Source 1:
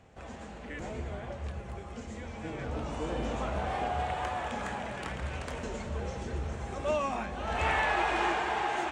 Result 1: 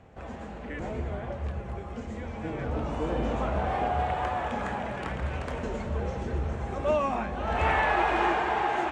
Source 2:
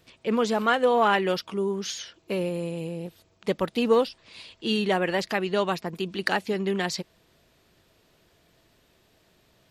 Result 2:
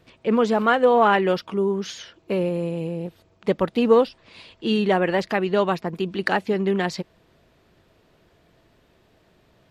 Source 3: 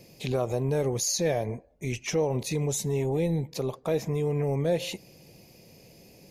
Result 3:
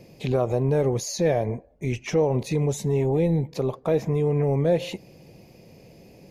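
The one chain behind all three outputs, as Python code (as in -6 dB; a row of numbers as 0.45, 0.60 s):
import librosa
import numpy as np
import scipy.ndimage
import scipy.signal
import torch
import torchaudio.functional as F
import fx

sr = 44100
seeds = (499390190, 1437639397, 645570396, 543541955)

y = fx.high_shelf(x, sr, hz=3300.0, db=-12.0)
y = y * 10.0 ** (5.0 / 20.0)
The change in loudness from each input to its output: +4.0, +4.5, +4.5 LU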